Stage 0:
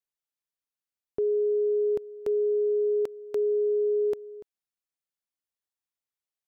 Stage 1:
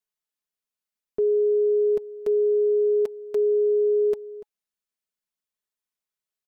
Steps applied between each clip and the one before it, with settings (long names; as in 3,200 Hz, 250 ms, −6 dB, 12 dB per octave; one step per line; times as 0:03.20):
notch filter 840 Hz, Q 22
comb filter 4.7 ms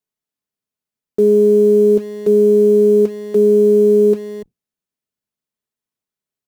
sub-octave generator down 1 octave, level −3 dB
parametric band 230 Hz +9.5 dB 2.7 octaves
in parallel at −10.5 dB: bit reduction 5 bits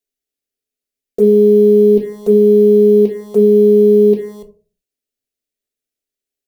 phaser swept by the level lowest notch 170 Hz, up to 1,400 Hz, full sweep at −9 dBFS
on a send at −6 dB: convolution reverb RT60 0.40 s, pre-delay 3 ms
on the sum: level +2.5 dB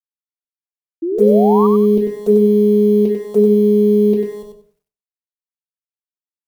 bit-depth reduction 12 bits, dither none
sound drawn into the spectrogram rise, 0:01.02–0:01.67, 320–1,200 Hz −18 dBFS
on a send: repeating echo 95 ms, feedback 21%, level −5 dB
on the sum: level −1.5 dB